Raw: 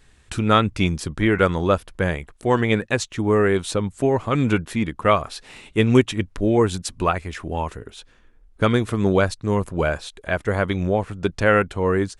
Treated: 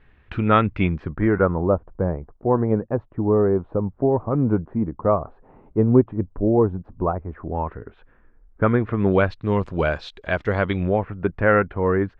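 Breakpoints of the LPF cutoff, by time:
LPF 24 dB/oct
0.81 s 2600 Hz
1.7 s 1000 Hz
7.22 s 1000 Hz
7.73 s 1800 Hz
8.72 s 1800 Hz
9.7 s 4600 Hz
10.52 s 4600 Hz
11.16 s 2000 Hz

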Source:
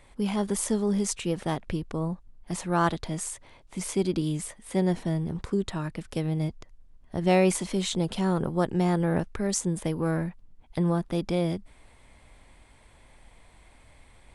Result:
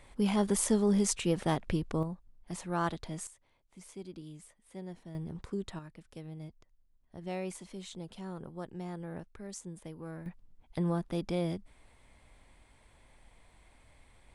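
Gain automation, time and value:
-1 dB
from 2.03 s -8 dB
from 3.27 s -19 dB
from 5.15 s -9.5 dB
from 5.79 s -16.5 dB
from 10.26 s -6 dB

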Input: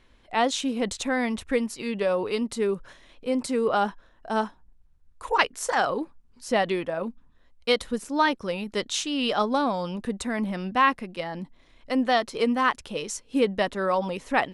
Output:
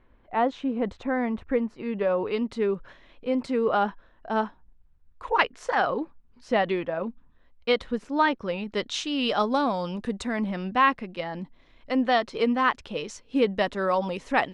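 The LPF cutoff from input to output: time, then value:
1.78 s 1500 Hz
2.44 s 3200 Hz
8.44 s 3200 Hz
9.5 s 7200 Hz
10.06 s 7200 Hz
10.58 s 4300 Hz
13.28 s 4300 Hz
13.8 s 7100 Hz

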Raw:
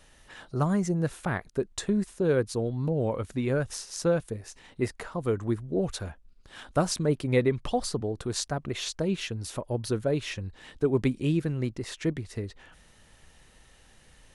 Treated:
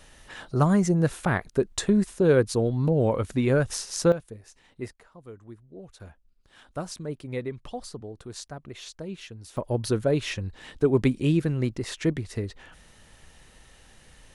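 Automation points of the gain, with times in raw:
+5 dB
from 4.12 s -7 dB
from 4.93 s -16.5 dB
from 6 s -8.5 dB
from 9.57 s +3.5 dB

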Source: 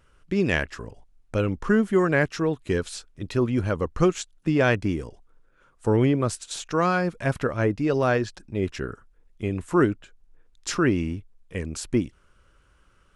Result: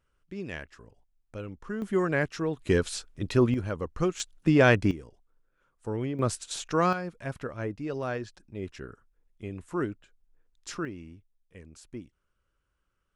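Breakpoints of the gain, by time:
-14.5 dB
from 1.82 s -5.5 dB
from 2.57 s +1 dB
from 3.54 s -7 dB
from 4.2 s +1 dB
from 4.91 s -11.5 dB
from 6.19 s -2 dB
from 6.93 s -10.5 dB
from 10.85 s -18 dB

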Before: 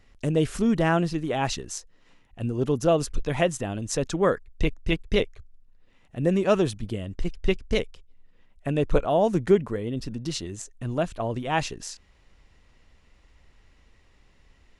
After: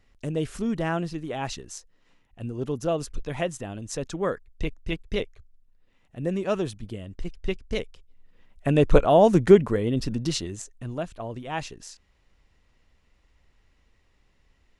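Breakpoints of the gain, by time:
7.68 s -5 dB
8.76 s +5 dB
10.19 s +5 dB
11.06 s -6 dB

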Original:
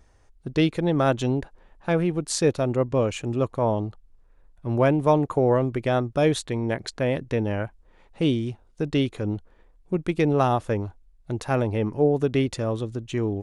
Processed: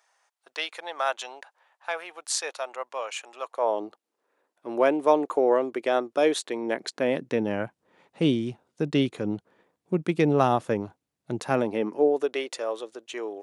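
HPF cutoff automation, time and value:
HPF 24 dB/oct
3.41 s 730 Hz
3.84 s 310 Hz
6.45 s 310 Hz
7.6 s 140 Hz
11.43 s 140 Hz
12.37 s 440 Hz

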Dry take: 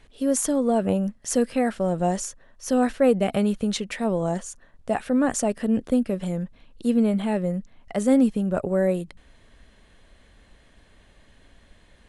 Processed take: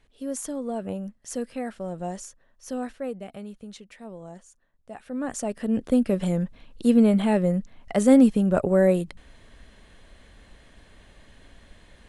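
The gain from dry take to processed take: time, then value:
2.69 s -9 dB
3.31 s -16.5 dB
4.91 s -16.5 dB
5.22 s -8.5 dB
6.14 s +3 dB

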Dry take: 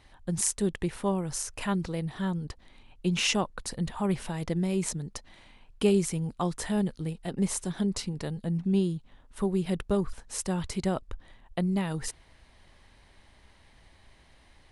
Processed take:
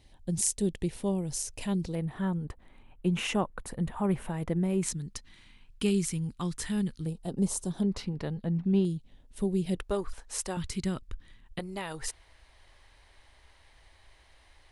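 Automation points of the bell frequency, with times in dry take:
bell -14.5 dB 1.3 oct
1300 Hz
from 1.95 s 5000 Hz
from 4.83 s 650 Hz
from 7.06 s 2000 Hz
from 7.83 s 8500 Hz
from 8.85 s 1200 Hz
from 9.75 s 150 Hz
from 10.57 s 690 Hz
from 11.59 s 190 Hz

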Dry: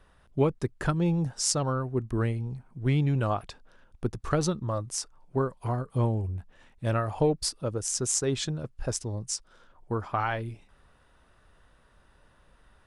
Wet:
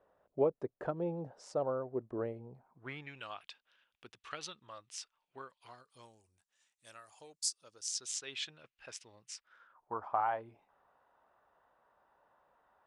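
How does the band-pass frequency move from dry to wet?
band-pass, Q 2.2
2.53 s 570 Hz
3.22 s 2900 Hz
5.42 s 2900 Hz
6.25 s 7200 Hz
7.46 s 7200 Hz
8.36 s 2600 Hz
9.27 s 2600 Hz
10.04 s 810 Hz

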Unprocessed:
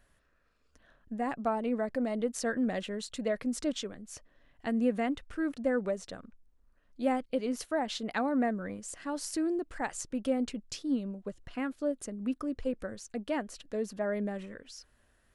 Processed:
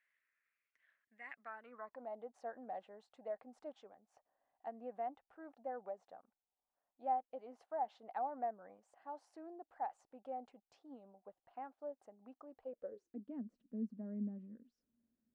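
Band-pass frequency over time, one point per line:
band-pass, Q 7
1.35 s 2100 Hz
2.09 s 780 Hz
12.61 s 780 Hz
13.3 s 230 Hz

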